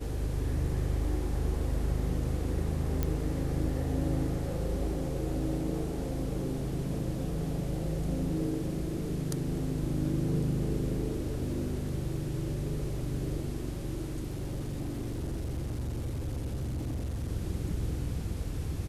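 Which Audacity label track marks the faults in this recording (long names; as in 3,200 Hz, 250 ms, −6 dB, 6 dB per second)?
3.030000	3.030000	click −16 dBFS
14.300000	17.280000	clipping −30.5 dBFS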